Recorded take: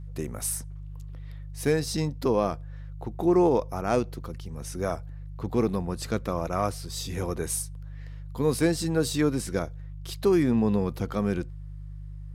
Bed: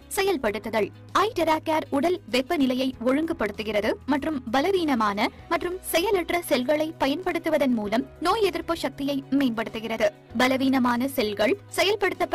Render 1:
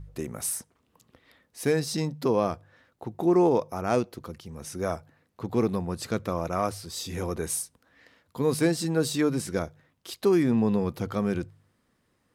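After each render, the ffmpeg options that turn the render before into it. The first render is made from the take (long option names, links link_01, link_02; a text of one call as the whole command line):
ffmpeg -i in.wav -af "bandreject=frequency=50:width_type=h:width=4,bandreject=frequency=100:width_type=h:width=4,bandreject=frequency=150:width_type=h:width=4" out.wav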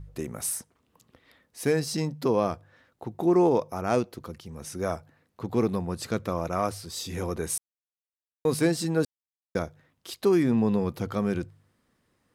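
ffmpeg -i in.wav -filter_complex "[0:a]asettb=1/sr,asplit=3[link_01][link_02][link_03];[link_01]atrim=end=1.664[link_04];[link_02]atrim=start=1.66:end=2.19,asetpts=PTS-STARTPTS,afade=type=in:duration=0.004:curve=qsin,afade=type=out:start_time=0.526:duration=0.004:curve=qsin,bandreject=frequency=3700:width=12[link_05];[link_03]atrim=start=2.186[link_06];[link_04][link_05]acrossfade=duration=0.004:curve1=hsin:curve2=qsin[link_07];[link_07][link_06]acrossfade=duration=0.004:curve1=qsin:curve2=hsin,asplit=5[link_08][link_09][link_10][link_11][link_12];[link_08]atrim=end=7.58,asetpts=PTS-STARTPTS,afade=type=out:start_time=7.576:duration=0.004:curve=hsin[link_13];[link_09]atrim=start=7.58:end=8.45,asetpts=PTS-STARTPTS,volume=0[link_14];[link_10]atrim=start=8.45:end=9.05,asetpts=PTS-STARTPTS,afade=type=in:duration=0.004:curve=hsin,afade=type=out:start_time=0.596:duration=0.004:curve=hsin[link_15];[link_11]atrim=start=9.05:end=9.55,asetpts=PTS-STARTPTS,volume=0[link_16];[link_12]atrim=start=9.55,asetpts=PTS-STARTPTS,afade=type=in:duration=0.004:curve=hsin[link_17];[link_13][link_14][link_15][link_16][link_17]concat=n=5:v=0:a=1" out.wav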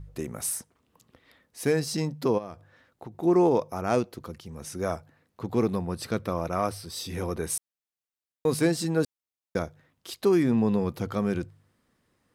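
ffmpeg -i in.wav -filter_complex "[0:a]asplit=3[link_01][link_02][link_03];[link_01]afade=type=out:start_time=2.37:duration=0.02[link_04];[link_02]acompressor=threshold=-37dB:ratio=3:attack=3.2:release=140:knee=1:detection=peak,afade=type=in:start_time=2.37:duration=0.02,afade=type=out:start_time=3.22:duration=0.02[link_05];[link_03]afade=type=in:start_time=3.22:duration=0.02[link_06];[link_04][link_05][link_06]amix=inputs=3:normalize=0,asettb=1/sr,asplit=3[link_07][link_08][link_09];[link_07]atrim=end=5.794[link_10];[link_08]atrim=start=5.79:end=7.51,asetpts=PTS-STARTPTS,afade=type=in:duration=0.004:curve=qsin,afade=type=out:start_time=1.716:duration=0.004:curve=qsin,bandreject=frequency=6900:width=5.4[link_11];[link_09]atrim=start=7.506[link_12];[link_10][link_11]acrossfade=duration=0.004:curve1=hsin:curve2=qsin[link_13];[link_13][link_12]acrossfade=duration=0.004:curve1=qsin:curve2=hsin" out.wav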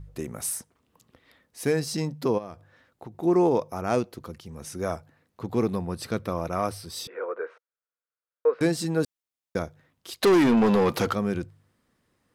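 ffmpeg -i in.wav -filter_complex "[0:a]asettb=1/sr,asplit=3[link_01][link_02][link_03];[link_01]atrim=end=7.074[link_04];[link_02]atrim=start=7.07:end=8.61,asetpts=PTS-STARTPTS,afade=type=in:duration=0.004:curve=qsin,afade=type=out:start_time=1.536:duration=0.004:curve=qsin,highpass=frequency=470:width=0.5412,highpass=frequency=470:width=1.3066,equalizer=frequency=480:width_type=q:width=4:gain=9,equalizer=frequency=770:width_type=q:width=4:gain=-8,equalizer=frequency=1400:width_type=q:width=4:gain=9,equalizer=frequency=2000:width_type=q:width=4:gain=-3,lowpass=frequency=2000:width=0.5412,lowpass=frequency=2000:width=1.3066[link_05];[link_03]atrim=start=8.606[link_06];[link_04][link_05]acrossfade=duration=0.004:curve1=hsin:curve2=qsin[link_07];[link_07][link_06]acrossfade=duration=0.004:curve1=qsin:curve2=hsin,asplit=3[link_08][link_09][link_10];[link_08]afade=type=out:start_time=10.21:duration=0.02[link_11];[link_09]asplit=2[link_12][link_13];[link_13]highpass=frequency=720:poles=1,volume=24dB,asoftclip=type=tanh:threshold=-12dB[link_14];[link_12][link_14]amix=inputs=2:normalize=0,lowpass=frequency=6300:poles=1,volume=-6dB,afade=type=in:start_time=10.21:duration=0.02,afade=type=out:start_time=11.12:duration=0.02[link_15];[link_10]afade=type=in:start_time=11.12:duration=0.02[link_16];[link_11][link_15][link_16]amix=inputs=3:normalize=0" out.wav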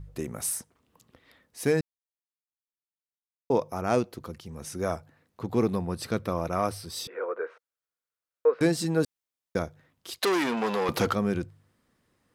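ffmpeg -i in.wav -filter_complex "[0:a]asettb=1/sr,asplit=3[link_01][link_02][link_03];[link_01]atrim=end=10.194[link_04];[link_02]atrim=start=10.19:end=10.89,asetpts=PTS-STARTPTS,afade=type=in:duration=0.004:curve=qsin,afade=type=out:start_time=0.696:duration=0.004:curve=qsin,highpass=frequency=810:poles=1[link_05];[link_03]atrim=start=10.886[link_06];[link_04][link_05]acrossfade=duration=0.004:curve1=hsin:curve2=qsin[link_07];[link_07][link_06]acrossfade=duration=0.004:curve1=qsin:curve2=hsin,asplit=3[link_08][link_09][link_10];[link_08]atrim=end=1.81,asetpts=PTS-STARTPTS,afade=type=out:start_time=1.806:duration=0.004:curve=hsin[link_11];[link_09]atrim=start=1.81:end=3.5,asetpts=PTS-STARTPTS,volume=0[link_12];[link_10]atrim=start=3.5,asetpts=PTS-STARTPTS,afade=type=in:duration=0.004:curve=hsin[link_13];[link_11][link_12][link_13]concat=n=3:v=0:a=1" out.wav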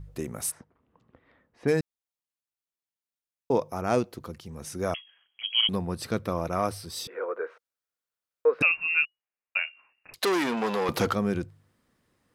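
ffmpeg -i in.wav -filter_complex "[0:a]asplit=3[link_01][link_02][link_03];[link_01]afade=type=out:start_time=0.5:duration=0.02[link_04];[link_02]lowpass=1700,afade=type=in:start_time=0.5:duration=0.02,afade=type=out:start_time=1.67:duration=0.02[link_05];[link_03]afade=type=in:start_time=1.67:duration=0.02[link_06];[link_04][link_05][link_06]amix=inputs=3:normalize=0,asettb=1/sr,asplit=3[link_07][link_08][link_09];[link_07]atrim=end=4.944[link_10];[link_08]atrim=start=4.94:end=5.69,asetpts=PTS-STARTPTS,afade=type=in:duration=0.004:curve=qsin,afade=type=out:start_time=0.746:duration=0.004:curve=qsin,lowpass=frequency=2900:width_type=q:width=0.5098,lowpass=frequency=2900:width_type=q:width=0.6013,lowpass=frequency=2900:width_type=q:width=0.9,lowpass=frequency=2900:width_type=q:width=2.563,afreqshift=-3400[link_11];[link_09]atrim=start=5.686[link_12];[link_10][link_11]acrossfade=duration=0.004:curve1=hsin:curve2=qsin[link_13];[link_13][link_12]acrossfade=duration=0.004:curve1=qsin:curve2=hsin,asettb=1/sr,asplit=3[link_14][link_15][link_16];[link_14]atrim=end=8.624[link_17];[link_15]atrim=start=8.62:end=10.14,asetpts=PTS-STARTPTS,afade=type=in:duration=0.004:curve=qsin,afade=type=out:start_time=1.516:duration=0.004:curve=qsin,lowpass=frequency=2500:width_type=q:width=0.5098,lowpass=frequency=2500:width_type=q:width=0.6013,lowpass=frequency=2500:width_type=q:width=0.9,lowpass=frequency=2500:width_type=q:width=2.563,afreqshift=-2900[link_18];[link_16]atrim=start=10.136[link_19];[link_17][link_18]acrossfade=duration=0.004:curve1=hsin:curve2=qsin[link_20];[link_20][link_19]acrossfade=duration=0.004:curve1=qsin:curve2=hsin" out.wav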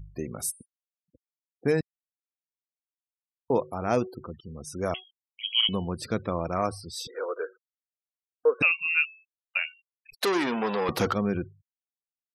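ffmpeg -i in.wav -af "bandreject=frequency=373:width_type=h:width=4,bandreject=frequency=746:width_type=h:width=4,bandreject=frequency=1119:width_type=h:width=4,bandreject=frequency=1492:width_type=h:width=4,bandreject=frequency=1865:width_type=h:width=4,bandreject=frequency=2238:width_type=h:width=4,bandreject=frequency=2611:width_type=h:width=4,bandreject=frequency=2984:width_type=h:width=4,bandreject=frequency=3357:width_type=h:width=4,bandreject=frequency=3730:width_type=h:width=4,bandreject=frequency=4103:width_type=h:width=4,bandreject=frequency=4476:width_type=h:width=4,bandreject=frequency=4849:width_type=h:width=4,bandreject=frequency=5222:width_type=h:width=4,bandreject=frequency=5595:width_type=h:width=4,bandreject=frequency=5968:width_type=h:width=4,bandreject=frequency=6341:width_type=h:width=4,bandreject=frequency=6714:width_type=h:width=4,bandreject=frequency=7087:width_type=h:width=4,bandreject=frequency=7460:width_type=h:width=4,bandreject=frequency=7833:width_type=h:width=4,bandreject=frequency=8206:width_type=h:width=4,bandreject=frequency=8579:width_type=h:width=4,bandreject=frequency=8952:width_type=h:width=4,bandreject=frequency=9325:width_type=h:width=4,bandreject=frequency=9698:width_type=h:width=4,bandreject=frequency=10071:width_type=h:width=4,afftfilt=real='re*gte(hypot(re,im),0.00891)':imag='im*gte(hypot(re,im),0.00891)':win_size=1024:overlap=0.75" out.wav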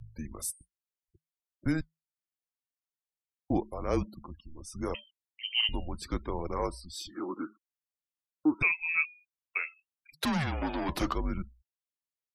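ffmpeg -i in.wav -af "flanger=delay=0.2:depth=4.4:regen=-75:speed=0.77:shape=triangular,afreqshift=-160" out.wav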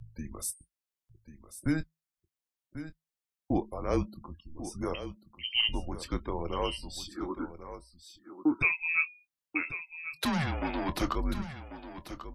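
ffmpeg -i in.wav -filter_complex "[0:a]asplit=2[link_01][link_02];[link_02]adelay=24,volume=-13.5dB[link_03];[link_01][link_03]amix=inputs=2:normalize=0,aecho=1:1:1091:0.251" out.wav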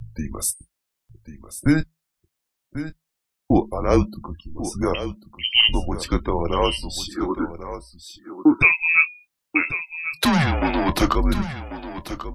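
ffmpeg -i in.wav -af "volume=11.5dB" out.wav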